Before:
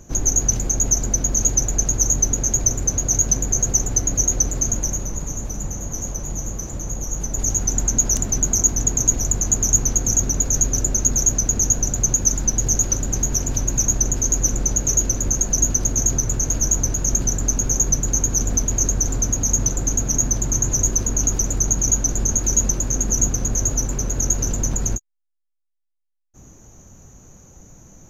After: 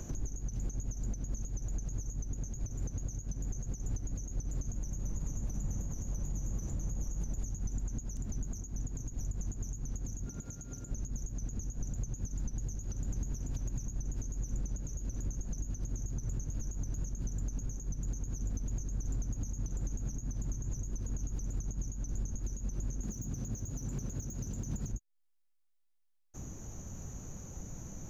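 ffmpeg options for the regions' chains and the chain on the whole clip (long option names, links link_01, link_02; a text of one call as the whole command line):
ffmpeg -i in.wav -filter_complex "[0:a]asettb=1/sr,asplit=3[link_01][link_02][link_03];[link_01]atrim=end=10.264[link_04];[link_02]atrim=start=10.26:end=10.91,asetpts=PTS-STARTPTS,afade=type=in:duration=0.004:curve=qsin,afade=type=out:start_time=0.646:duration=0.004:curve=qsin,highpass=frequency=170:poles=1,aeval=exprs='val(0)+0.00891*sin(2*PI*1400*n/s)':channel_layout=same[link_05];[link_03]atrim=start=10.906[link_06];[link_04][link_05]acrossfade=duration=0.004:curve1=hsin:curve2=qsin[link_07];[link_07][link_06]acrossfade=duration=0.004:curve1=qsin:curve2=hsin,asettb=1/sr,asplit=3[link_08][link_09][link_10];[link_08]atrim=end=23.034[link_11];[link_09]atrim=start=23.03:end=24.92,asetpts=PTS-STARTPTS,afade=type=in:duration=0.004:curve=qsin,afade=type=out:start_time=1.886:duration=0.004:curve=qsin,acrossover=split=240|3000[link_12][link_13][link_14];[link_13]acompressor=threshold=-39dB:ratio=1.5:attack=3.2:release=140:knee=2.83:detection=peak[link_15];[link_12][link_15][link_14]amix=inputs=3:normalize=0,highpass=frequency=180:poles=1,aeval=exprs='0.501*sin(PI/2*2.24*val(0)/0.501)':channel_layout=same[link_16];[link_10]atrim=start=24.916[link_17];[link_11][link_16]acrossfade=duration=0.004:curve1=hsin:curve2=qsin[link_18];[link_18][link_17]acrossfade=duration=0.004:curve1=qsin:curve2=hsin,acompressor=threshold=-27dB:ratio=6,alimiter=level_in=4dB:limit=-24dB:level=0:latency=1:release=131,volume=-4dB,acrossover=split=250[link_19][link_20];[link_20]acompressor=threshold=-53dB:ratio=4[link_21];[link_19][link_21]amix=inputs=2:normalize=0,volume=2.5dB" out.wav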